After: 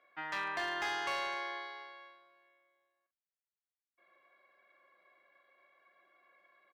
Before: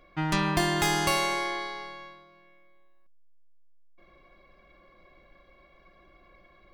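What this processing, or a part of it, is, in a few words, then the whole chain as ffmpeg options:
megaphone: -filter_complex "[0:a]highpass=610,lowpass=3300,equalizer=frequency=1700:width_type=o:width=0.47:gain=6,asoftclip=type=hard:threshold=-21.5dB,asplit=2[link_01][link_02];[link_02]adelay=43,volume=-10dB[link_03];[link_01][link_03]amix=inputs=2:normalize=0,volume=-8.5dB"

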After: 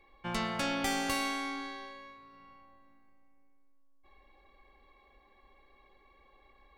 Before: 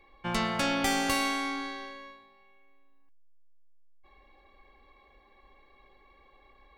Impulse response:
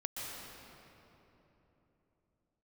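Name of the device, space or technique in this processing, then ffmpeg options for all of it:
ducked reverb: -filter_complex "[0:a]asplit=3[link_01][link_02][link_03];[1:a]atrim=start_sample=2205[link_04];[link_02][link_04]afir=irnorm=-1:irlink=0[link_05];[link_03]apad=whole_len=298736[link_06];[link_05][link_06]sidechaincompress=threshold=-52dB:ratio=8:attack=16:release=430,volume=-12dB[link_07];[link_01][link_07]amix=inputs=2:normalize=0,volume=-4.5dB"

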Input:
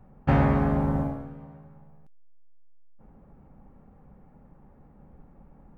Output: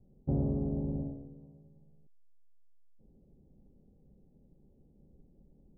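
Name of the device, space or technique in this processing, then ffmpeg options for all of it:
under water: -filter_complex "[0:a]lowpass=frequency=520:width=0.5412,lowpass=frequency=520:width=1.3066,equalizer=frequency=370:width_type=o:width=0.31:gain=5,asettb=1/sr,asplit=3[link_01][link_02][link_03];[link_01]atrim=end=0.694[link_04];[link_02]atrim=start=0.69:end=1.23,asetpts=PTS-STARTPTS,afade=type=in:duration=0.004:curve=qsin,afade=type=out:start_time=0.536:duration=0.004:curve=qsin,lowpass=frequency=1300:width=0.5412,lowpass=frequency=1300:width=1.3066[link_05];[link_03]atrim=start=1.226[link_06];[link_04][link_05]acrossfade=duration=0.004:curve1=hsin:curve2=qsin[link_07];[link_07][link_06]acrossfade=duration=0.004:curve1=qsin:curve2=hsin,volume=-9dB"

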